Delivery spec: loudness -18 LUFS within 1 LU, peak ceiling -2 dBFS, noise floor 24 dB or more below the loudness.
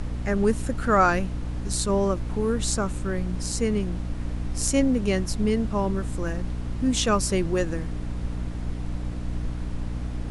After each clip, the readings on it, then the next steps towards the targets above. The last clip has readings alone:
hum 60 Hz; harmonics up to 300 Hz; hum level -29 dBFS; noise floor -31 dBFS; noise floor target -51 dBFS; loudness -26.5 LUFS; peak -6.5 dBFS; loudness target -18.0 LUFS
-> notches 60/120/180/240/300 Hz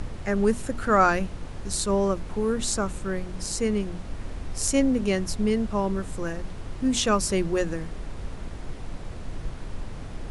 hum none; noise floor -37 dBFS; noise floor target -50 dBFS
-> noise print and reduce 13 dB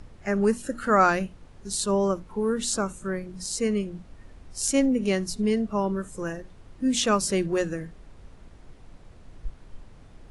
noise floor -50 dBFS; loudness -26.0 LUFS; peak -7.5 dBFS; loudness target -18.0 LUFS
-> gain +8 dB; limiter -2 dBFS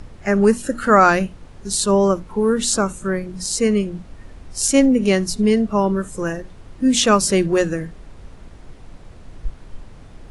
loudness -18.0 LUFS; peak -2.0 dBFS; noise floor -42 dBFS

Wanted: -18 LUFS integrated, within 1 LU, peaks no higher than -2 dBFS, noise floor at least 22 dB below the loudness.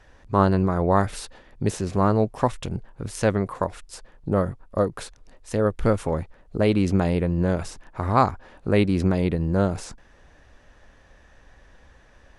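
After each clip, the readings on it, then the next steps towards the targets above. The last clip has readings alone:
loudness -24.0 LUFS; peak -4.5 dBFS; loudness target -18.0 LUFS
-> gain +6 dB; limiter -2 dBFS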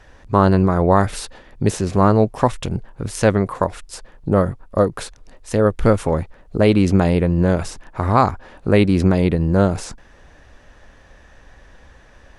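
loudness -18.0 LUFS; peak -2.0 dBFS; noise floor -48 dBFS

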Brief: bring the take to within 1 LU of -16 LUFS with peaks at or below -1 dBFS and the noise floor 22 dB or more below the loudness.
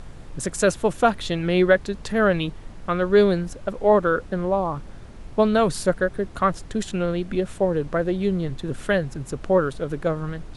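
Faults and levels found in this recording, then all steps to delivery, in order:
noise floor -40 dBFS; noise floor target -45 dBFS; loudness -23.0 LUFS; peak -4.5 dBFS; loudness target -16.0 LUFS
-> noise print and reduce 6 dB; gain +7 dB; limiter -1 dBFS

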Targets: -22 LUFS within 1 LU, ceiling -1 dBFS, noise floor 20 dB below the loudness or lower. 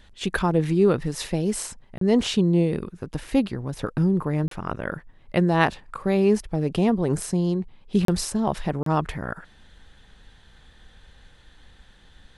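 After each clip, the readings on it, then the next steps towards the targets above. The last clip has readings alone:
dropouts 4; longest dropout 33 ms; loudness -24.0 LUFS; peak -4.0 dBFS; loudness target -22.0 LUFS
-> interpolate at 1.98/4.48/8.05/8.83, 33 ms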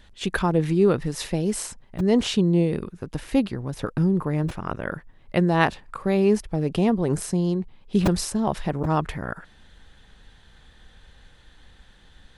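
dropouts 0; loudness -24.0 LUFS; peak -4.0 dBFS; loudness target -22.0 LUFS
-> gain +2 dB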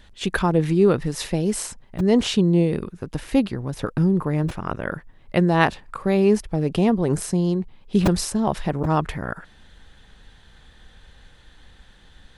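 loudness -22.0 LUFS; peak -2.0 dBFS; noise floor -52 dBFS

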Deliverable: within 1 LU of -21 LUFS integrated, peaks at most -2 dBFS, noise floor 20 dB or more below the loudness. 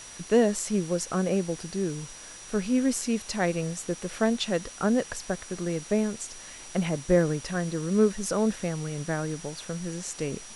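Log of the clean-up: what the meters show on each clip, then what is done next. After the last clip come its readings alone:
steady tone 5800 Hz; tone level -46 dBFS; noise floor -45 dBFS; noise floor target -48 dBFS; loudness -28.0 LUFS; peak -9.0 dBFS; loudness target -21.0 LUFS
-> notch 5800 Hz, Q 30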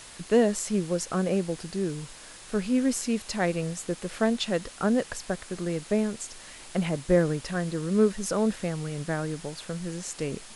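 steady tone none; noise floor -47 dBFS; noise floor target -48 dBFS
-> denoiser 6 dB, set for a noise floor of -47 dBFS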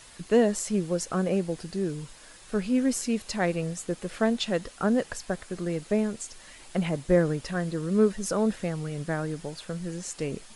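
noise floor -50 dBFS; loudness -28.0 LUFS; peak -9.5 dBFS; loudness target -21.0 LUFS
-> gain +7 dB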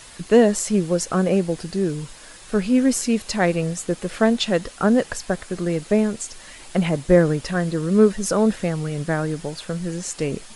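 loudness -21.0 LUFS; peak -2.5 dBFS; noise floor -43 dBFS

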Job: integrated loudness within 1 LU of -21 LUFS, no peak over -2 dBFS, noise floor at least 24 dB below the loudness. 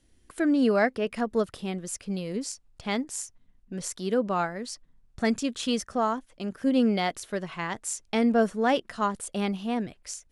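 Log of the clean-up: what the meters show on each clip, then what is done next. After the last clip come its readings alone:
loudness -28.0 LUFS; peak -11.5 dBFS; loudness target -21.0 LUFS
-> gain +7 dB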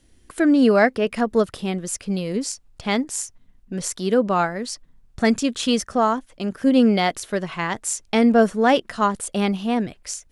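loudness -21.0 LUFS; peak -4.5 dBFS; noise floor -56 dBFS

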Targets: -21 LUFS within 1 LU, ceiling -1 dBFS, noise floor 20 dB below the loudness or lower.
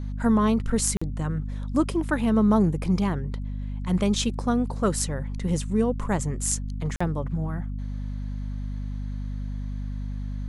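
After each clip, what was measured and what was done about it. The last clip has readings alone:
dropouts 2; longest dropout 45 ms; hum 50 Hz; harmonics up to 250 Hz; hum level -28 dBFS; loudness -26.5 LUFS; peak -6.0 dBFS; loudness target -21.0 LUFS
-> interpolate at 0.97/6.96, 45 ms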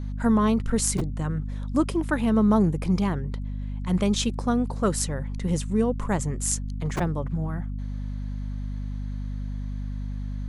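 dropouts 0; hum 50 Hz; harmonics up to 250 Hz; hum level -28 dBFS
-> notches 50/100/150/200/250 Hz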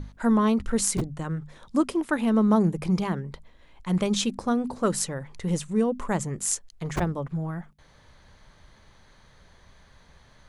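hum none; loudness -26.0 LUFS; peak -6.5 dBFS; loudness target -21.0 LUFS
-> gain +5 dB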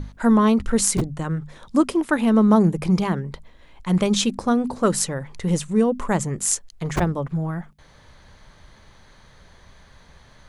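loudness -21.0 LUFS; peak -1.5 dBFS; noise floor -51 dBFS

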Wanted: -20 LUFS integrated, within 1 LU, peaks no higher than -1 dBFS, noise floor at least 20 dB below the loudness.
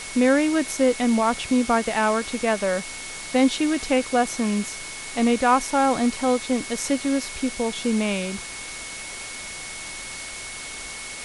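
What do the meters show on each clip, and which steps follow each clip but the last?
steady tone 2200 Hz; tone level -38 dBFS; noise floor -36 dBFS; noise floor target -44 dBFS; loudness -23.5 LUFS; peak -7.0 dBFS; loudness target -20.0 LUFS
-> notch 2200 Hz, Q 30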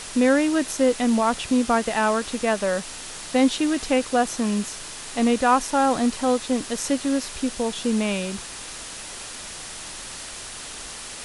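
steady tone none; noise floor -37 dBFS; noise floor target -43 dBFS
-> denoiser 6 dB, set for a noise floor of -37 dBFS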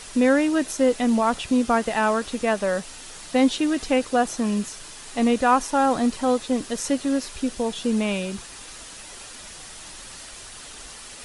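noise floor -41 dBFS; noise floor target -43 dBFS
-> denoiser 6 dB, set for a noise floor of -41 dBFS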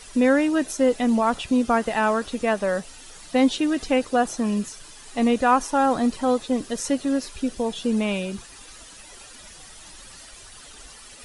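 noise floor -45 dBFS; loudness -23.0 LUFS; peak -7.0 dBFS; loudness target -20.0 LUFS
-> gain +3 dB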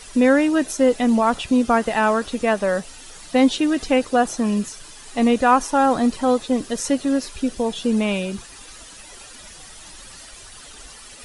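loudness -20.0 LUFS; peak -4.0 dBFS; noise floor -42 dBFS

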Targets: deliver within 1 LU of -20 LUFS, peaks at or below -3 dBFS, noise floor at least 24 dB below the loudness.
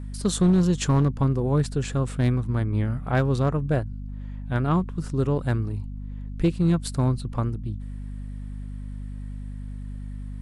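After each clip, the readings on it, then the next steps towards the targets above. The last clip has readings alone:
clipped 0.5%; flat tops at -13.0 dBFS; hum 50 Hz; harmonics up to 250 Hz; hum level -32 dBFS; loudness -24.5 LUFS; peak -13.0 dBFS; loudness target -20.0 LUFS
-> clip repair -13 dBFS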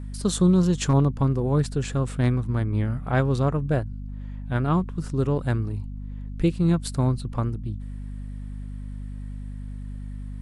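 clipped 0.0%; hum 50 Hz; harmonics up to 250 Hz; hum level -32 dBFS
-> de-hum 50 Hz, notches 5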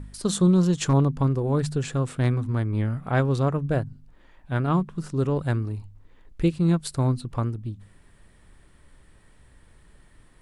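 hum none; loudness -24.5 LUFS; peak -8.5 dBFS; loudness target -20.0 LUFS
-> gain +4.5 dB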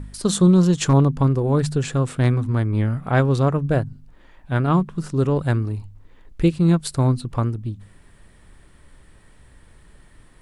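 loudness -20.0 LUFS; peak -4.0 dBFS; noise floor -51 dBFS

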